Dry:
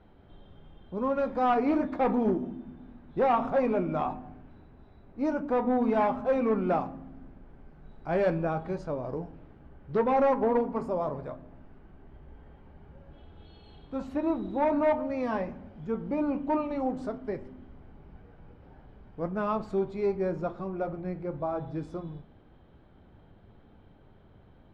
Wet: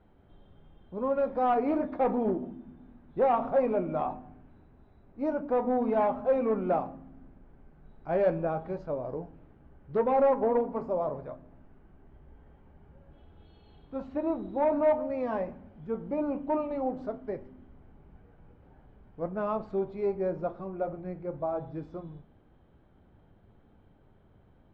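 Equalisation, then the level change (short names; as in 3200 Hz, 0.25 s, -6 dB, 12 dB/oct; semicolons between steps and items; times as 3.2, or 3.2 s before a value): air absorption 160 m; dynamic EQ 590 Hz, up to +6 dB, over -40 dBFS, Q 1.3; -4.0 dB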